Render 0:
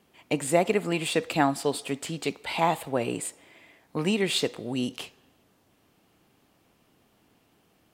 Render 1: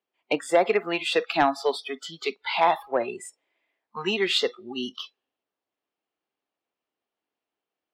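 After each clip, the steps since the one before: three-band isolator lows -19 dB, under 320 Hz, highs -17 dB, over 5700 Hz; spectral noise reduction 26 dB; in parallel at -8.5 dB: sine folder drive 6 dB, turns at -9 dBFS; on the sum: gain -1.5 dB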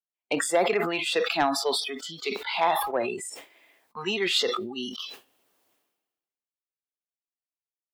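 gate with hold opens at -43 dBFS; high shelf 6400 Hz +10.5 dB; sustainer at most 49 dB/s; gain -3.5 dB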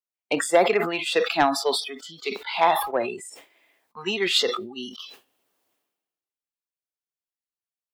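upward expander 1.5:1, over -37 dBFS; gain +5.5 dB

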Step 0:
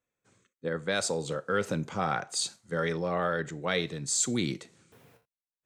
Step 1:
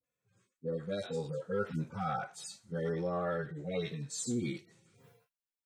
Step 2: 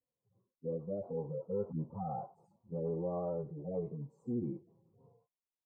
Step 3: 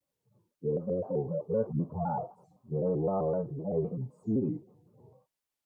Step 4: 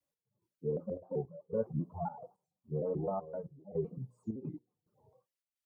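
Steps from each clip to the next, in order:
median-filter separation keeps harmonic; in parallel at -3 dB: limiter -27.5 dBFS, peak gain reduction 9 dB; on the sum: dispersion highs, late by 41 ms, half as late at 780 Hz; gain -6 dB
elliptic low-pass 1000 Hz, stop band 40 dB; gain -1.5 dB
shaped vibrato square 3.9 Hz, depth 160 cents; gain +7 dB
notches 60/120/180/240/300/360/420/480/540 Hz; reverb removal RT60 1.5 s; step gate "x..xxxx." 108 bpm -12 dB; gain -3 dB

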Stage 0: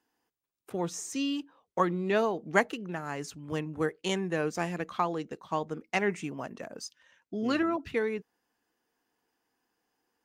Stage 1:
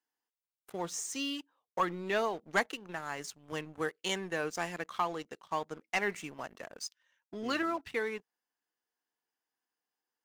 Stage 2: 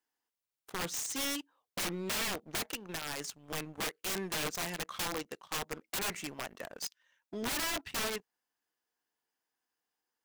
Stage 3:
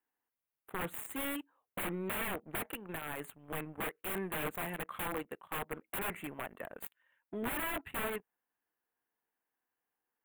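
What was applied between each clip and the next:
low shelf 500 Hz -11.5 dB; notch 2500 Hz, Q 24; sample leveller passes 2; gain -6.5 dB
wrapped overs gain 31 dB; gain +2 dB
Butterworth band-stop 5400 Hz, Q 0.66

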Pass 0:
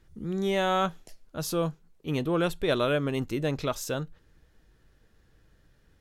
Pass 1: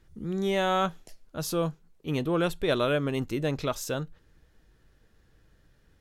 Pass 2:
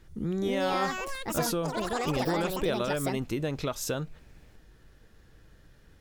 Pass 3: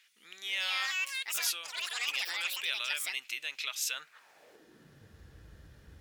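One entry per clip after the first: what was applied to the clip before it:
nothing audible
compressor, threshold -33 dBFS, peak gain reduction 11.5 dB; echoes that change speed 0.307 s, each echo +6 st, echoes 3; gain +5.5 dB
high-pass sweep 2500 Hz -> 63 Hz, 3.9–5.25; gain +1 dB

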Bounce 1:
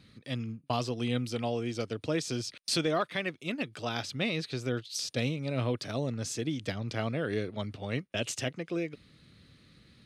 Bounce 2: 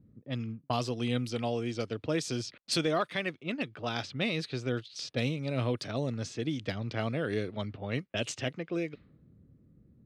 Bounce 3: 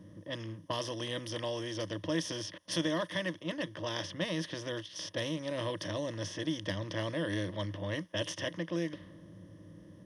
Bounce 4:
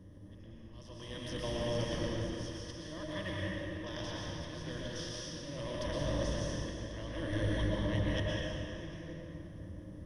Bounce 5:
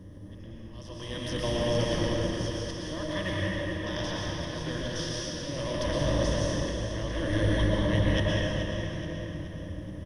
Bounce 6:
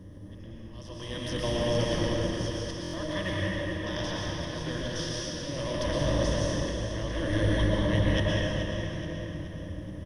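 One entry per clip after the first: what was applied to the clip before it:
low-pass opened by the level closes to 350 Hz, open at -28 dBFS
per-bin compression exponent 0.6; ripple EQ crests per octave 1.2, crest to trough 15 dB; gain -8.5 dB
octaver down 1 oct, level +2 dB; auto swell 0.741 s; plate-style reverb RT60 3 s, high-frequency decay 0.7×, pre-delay 0.1 s, DRR -5 dB; gain -5 dB
feedback echo 0.426 s, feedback 47%, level -10 dB; gain +7.5 dB
stuck buffer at 2.82, samples 1024, times 4

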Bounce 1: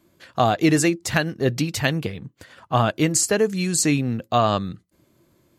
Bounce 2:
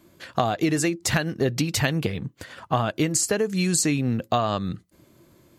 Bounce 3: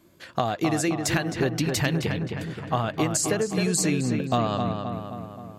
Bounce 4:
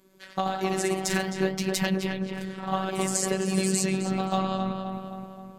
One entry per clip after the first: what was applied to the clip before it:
compressor 10:1, threshold -24 dBFS, peak gain reduction 11.5 dB; gain +5 dB
darkening echo 0.263 s, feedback 60%, low-pass 3000 Hz, level -5 dB; gain -2.5 dB
echoes that change speed 0.102 s, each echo +1 st, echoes 3, each echo -6 dB; robotiser 190 Hz; gain -1 dB

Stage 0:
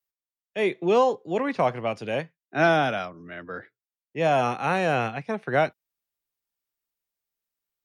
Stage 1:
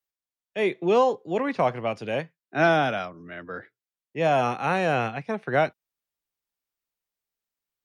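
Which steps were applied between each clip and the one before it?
high shelf 8000 Hz -4 dB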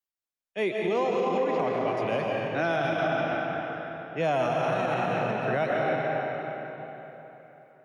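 random-step tremolo 3.5 Hz; digital reverb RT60 3.7 s, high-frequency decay 0.75×, pre-delay 95 ms, DRR -2 dB; limiter -18 dBFS, peak gain reduction 8 dB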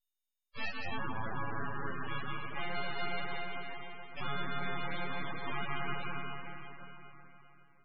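frequency quantiser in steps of 4 st; full-wave rectifier; loudest bins only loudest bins 32; gain -8 dB

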